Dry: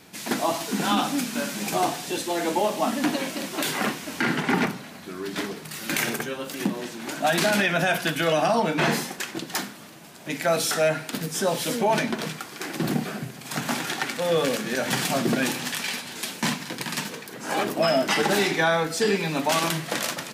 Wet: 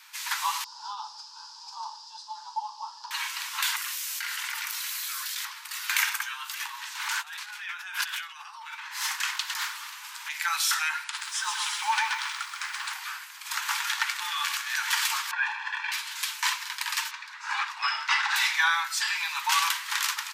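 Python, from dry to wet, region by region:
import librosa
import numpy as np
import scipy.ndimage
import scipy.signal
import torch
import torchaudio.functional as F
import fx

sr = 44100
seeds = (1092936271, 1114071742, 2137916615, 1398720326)

y = fx.chain(x, sr, fx.double_bandpass(hz=2100.0, octaves=2.5),
    fx.air_absorb(metres=54.0), at=(0.64, 3.11))
y = fx.chain(y, sr, fx.differentiator(),
    fx.env_flatten(amount_pct=100), at=(3.76, 5.45))
y = fx.chain(y, sr, fx.over_compress(threshold_db=-33.0, ratio=-1.0),
    fx.doppler_dist(depth_ms=0.14), at=(6.95, 10.34))
y = fx.chain(y, sr, fx.high_shelf(hz=7800.0, db=-5.5),
    fx.resample_bad(factor=2, down='none', up='filtered'),
    fx.echo_crushed(ms=129, feedback_pct=35, bits=8, wet_db=-4.0), at=(11.04, 12.93))
y = fx.chain(y, sr, fx.lowpass(hz=1700.0, slope=12),
    fx.comb(ms=1.2, depth=0.88), at=(15.31, 15.92))
y = fx.chain(y, sr, fx.lowpass(hz=4600.0, slope=12),
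    fx.notch(hz=3100.0, q=12.0), at=(17.11, 18.36))
y = scipy.signal.sosfilt(scipy.signal.butter(16, 890.0, 'highpass', fs=sr, output='sos'), y)
y = fx.peak_eq(y, sr, hz=9700.0, db=-4.0, octaves=0.4)
y = y * 10.0 ** (1.5 / 20.0)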